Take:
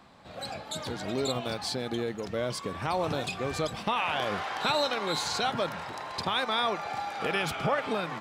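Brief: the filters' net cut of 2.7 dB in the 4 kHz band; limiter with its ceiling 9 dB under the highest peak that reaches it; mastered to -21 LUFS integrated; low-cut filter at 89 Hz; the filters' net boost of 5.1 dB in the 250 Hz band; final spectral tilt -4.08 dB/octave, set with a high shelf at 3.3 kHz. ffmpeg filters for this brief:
-af "highpass=89,equalizer=f=250:t=o:g=6.5,highshelf=f=3300:g=3.5,equalizer=f=4000:t=o:g=-5.5,volume=3.98,alimiter=limit=0.282:level=0:latency=1"

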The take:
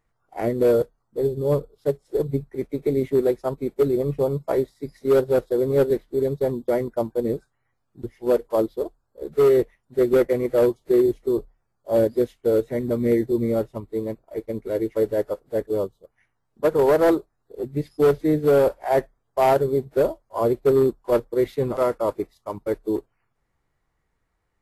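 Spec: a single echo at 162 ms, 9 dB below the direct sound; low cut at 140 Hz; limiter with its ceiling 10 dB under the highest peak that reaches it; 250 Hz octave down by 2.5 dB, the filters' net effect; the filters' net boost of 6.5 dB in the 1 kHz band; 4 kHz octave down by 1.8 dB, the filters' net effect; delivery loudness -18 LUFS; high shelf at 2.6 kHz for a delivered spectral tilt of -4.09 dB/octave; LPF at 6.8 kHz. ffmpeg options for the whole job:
-af "highpass=140,lowpass=6800,equalizer=f=250:t=o:g=-4.5,equalizer=f=1000:t=o:g=8.5,highshelf=f=2600:g=6,equalizer=f=4000:t=o:g=-7.5,alimiter=limit=0.224:level=0:latency=1,aecho=1:1:162:0.355,volume=2.11"

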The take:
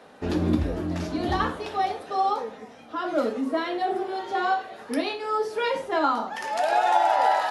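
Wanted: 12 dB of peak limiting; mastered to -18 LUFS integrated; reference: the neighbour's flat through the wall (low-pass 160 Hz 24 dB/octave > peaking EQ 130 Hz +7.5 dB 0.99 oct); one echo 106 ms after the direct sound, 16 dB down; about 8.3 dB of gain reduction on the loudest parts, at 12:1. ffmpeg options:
-af "acompressor=threshold=0.0631:ratio=12,alimiter=level_in=1.5:limit=0.0631:level=0:latency=1,volume=0.668,lowpass=f=160:w=0.5412,lowpass=f=160:w=1.3066,equalizer=f=130:t=o:w=0.99:g=7.5,aecho=1:1:106:0.158,volume=15"

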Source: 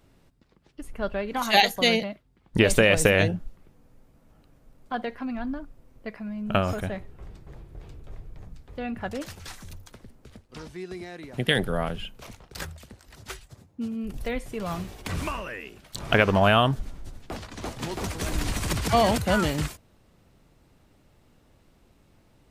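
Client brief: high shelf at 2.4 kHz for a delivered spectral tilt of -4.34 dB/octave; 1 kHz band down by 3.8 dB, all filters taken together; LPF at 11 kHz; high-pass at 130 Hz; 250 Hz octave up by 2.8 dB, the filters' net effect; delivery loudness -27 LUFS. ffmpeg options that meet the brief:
-af "highpass=130,lowpass=11000,equalizer=f=250:t=o:g=4.5,equalizer=f=1000:t=o:g=-5,highshelf=f=2400:g=-5.5"

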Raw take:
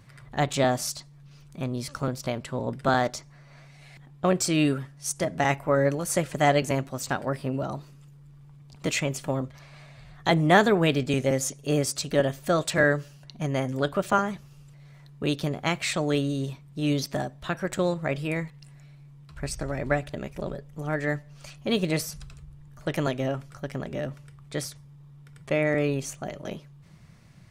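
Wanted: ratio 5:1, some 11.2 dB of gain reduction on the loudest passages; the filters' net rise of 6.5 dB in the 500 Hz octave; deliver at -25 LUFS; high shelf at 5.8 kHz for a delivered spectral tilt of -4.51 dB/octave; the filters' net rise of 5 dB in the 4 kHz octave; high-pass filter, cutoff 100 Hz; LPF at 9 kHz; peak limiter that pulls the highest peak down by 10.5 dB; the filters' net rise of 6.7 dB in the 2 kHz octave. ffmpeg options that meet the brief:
-af "highpass=100,lowpass=9000,equalizer=f=500:t=o:g=7.5,equalizer=f=2000:t=o:g=7,equalizer=f=4000:t=o:g=5.5,highshelf=f=5800:g=-4.5,acompressor=threshold=0.0708:ratio=5,volume=2,alimiter=limit=0.251:level=0:latency=1"

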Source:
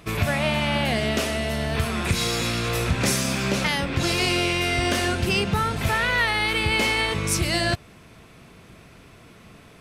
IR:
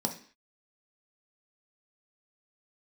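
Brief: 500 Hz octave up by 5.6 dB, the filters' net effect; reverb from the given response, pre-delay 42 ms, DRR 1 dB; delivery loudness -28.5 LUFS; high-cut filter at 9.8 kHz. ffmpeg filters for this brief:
-filter_complex "[0:a]lowpass=9800,equalizer=f=500:t=o:g=7.5,asplit=2[s0][s1];[1:a]atrim=start_sample=2205,adelay=42[s2];[s1][s2]afir=irnorm=-1:irlink=0,volume=0.501[s3];[s0][s3]amix=inputs=2:normalize=0,volume=0.266"

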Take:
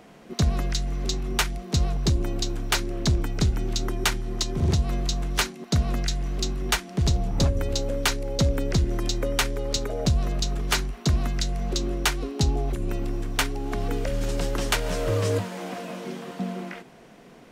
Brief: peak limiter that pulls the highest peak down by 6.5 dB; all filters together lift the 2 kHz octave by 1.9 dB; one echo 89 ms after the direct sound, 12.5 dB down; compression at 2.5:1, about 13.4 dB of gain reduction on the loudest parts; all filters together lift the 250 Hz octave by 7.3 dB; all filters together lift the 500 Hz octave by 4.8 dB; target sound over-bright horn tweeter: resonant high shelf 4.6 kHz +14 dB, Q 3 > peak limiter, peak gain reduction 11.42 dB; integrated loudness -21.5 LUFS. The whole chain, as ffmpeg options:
-af "equalizer=f=250:t=o:g=9,equalizer=f=500:t=o:g=3,equalizer=f=2000:t=o:g=6,acompressor=threshold=0.0178:ratio=2.5,alimiter=level_in=1.12:limit=0.0631:level=0:latency=1,volume=0.891,highshelf=f=4600:t=q:w=3:g=14,aecho=1:1:89:0.237,volume=3.98,alimiter=limit=0.335:level=0:latency=1"

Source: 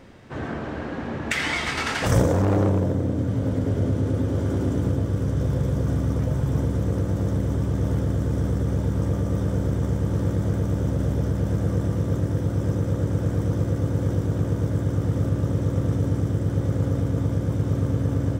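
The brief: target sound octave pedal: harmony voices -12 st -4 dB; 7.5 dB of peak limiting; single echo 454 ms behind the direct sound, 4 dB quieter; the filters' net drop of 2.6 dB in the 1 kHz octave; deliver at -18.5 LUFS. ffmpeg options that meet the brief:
-filter_complex "[0:a]equalizer=f=1000:t=o:g=-3.5,alimiter=limit=0.126:level=0:latency=1,aecho=1:1:454:0.631,asplit=2[s0][s1];[s1]asetrate=22050,aresample=44100,atempo=2,volume=0.631[s2];[s0][s2]amix=inputs=2:normalize=0,volume=2"

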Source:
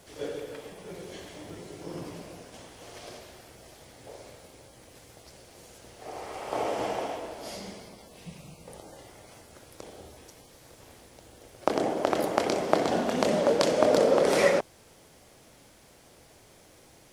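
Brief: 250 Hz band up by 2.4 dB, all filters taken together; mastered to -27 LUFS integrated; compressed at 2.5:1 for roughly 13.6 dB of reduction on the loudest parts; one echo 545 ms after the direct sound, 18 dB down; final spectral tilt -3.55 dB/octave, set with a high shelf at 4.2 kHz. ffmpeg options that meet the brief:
-af "equalizer=f=250:t=o:g=3,highshelf=f=4200:g=7,acompressor=threshold=0.0112:ratio=2.5,aecho=1:1:545:0.126,volume=5.31"

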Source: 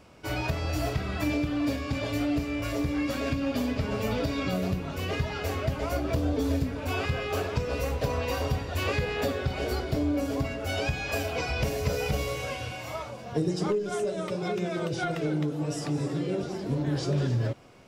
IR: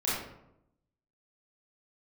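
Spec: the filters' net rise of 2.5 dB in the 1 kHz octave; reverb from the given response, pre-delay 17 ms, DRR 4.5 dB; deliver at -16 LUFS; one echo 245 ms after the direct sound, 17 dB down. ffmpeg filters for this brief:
-filter_complex "[0:a]equalizer=f=1000:t=o:g=3.5,aecho=1:1:245:0.141,asplit=2[s0][s1];[1:a]atrim=start_sample=2205,adelay=17[s2];[s1][s2]afir=irnorm=-1:irlink=0,volume=0.224[s3];[s0][s3]amix=inputs=2:normalize=0,volume=3.76"

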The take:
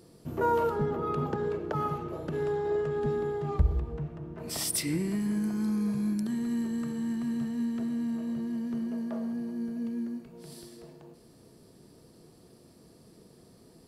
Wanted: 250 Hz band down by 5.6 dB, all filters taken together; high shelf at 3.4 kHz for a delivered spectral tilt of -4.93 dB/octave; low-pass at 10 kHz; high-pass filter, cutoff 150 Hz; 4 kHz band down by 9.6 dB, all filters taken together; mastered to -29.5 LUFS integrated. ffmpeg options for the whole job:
-af "highpass=150,lowpass=10000,equalizer=f=250:t=o:g=-5.5,highshelf=f=3400:g=-7,equalizer=f=4000:t=o:g=-7,volume=2"

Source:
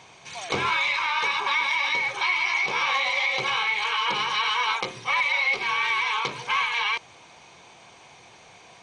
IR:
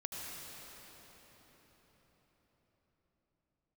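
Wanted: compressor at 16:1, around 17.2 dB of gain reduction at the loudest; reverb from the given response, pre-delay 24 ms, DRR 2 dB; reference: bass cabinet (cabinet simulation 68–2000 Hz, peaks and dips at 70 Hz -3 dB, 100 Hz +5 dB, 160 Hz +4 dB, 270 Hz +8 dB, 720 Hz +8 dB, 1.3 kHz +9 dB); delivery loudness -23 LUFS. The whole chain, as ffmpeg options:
-filter_complex "[0:a]acompressor=threshold=0.0126:ratio=16,asplit=2[s0][s1];[1:a]atrim=start_sample=2205,adelay=24[s2];[s1][s2]afir=irnorm=-1:irlink=0,volume=0.708[s3];[s0][s3]amix=inputs=2:normalize=0,highpass=f=68:w=0.5412,highpass=f=68:w=1.3066,equalizer=f=70:t=q:w=4:g=-3,equalizer=f=100:t=q:w=4:g=5,equalizer=f=160:t=q:w=4:g=4,equalizer=f=270:t=q:w=4:g=8,equalizer=f=720:t=q:w=4:g=8,equalizer=f=1300:t=q:w=4:g=9,lowpass=f=2000:w=0.5412,lowpass=f=2000:w=1.3066,volume=5.96"

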